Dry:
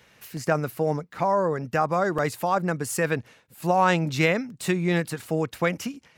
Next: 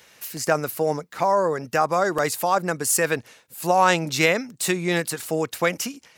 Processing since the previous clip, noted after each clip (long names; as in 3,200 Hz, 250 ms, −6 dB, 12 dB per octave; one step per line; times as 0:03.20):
bass and treble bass −8 dB, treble +8 dB
level +3 dB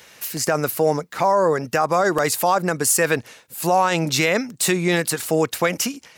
brickwall limiter −13.5 dBFS, peak gain reduction 10.5 dB
level +5.5 dB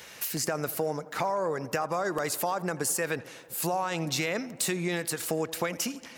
downward compressor 3 to 1, threshold −30 dBFS, peak gain reduction 13 dB
tape delay 86 ms, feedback 83%, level −17.5 dB, low-pass 2,600 Hz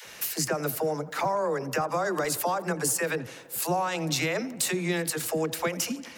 all-pass dispersion lows, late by 67 ms, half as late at 310 Hz
level +2 dB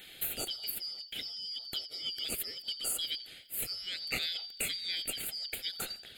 band-splitting scrambler in four parts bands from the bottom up 4321
phaser with its sweep stopped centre 2,500 Hz, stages 4
level −2 dB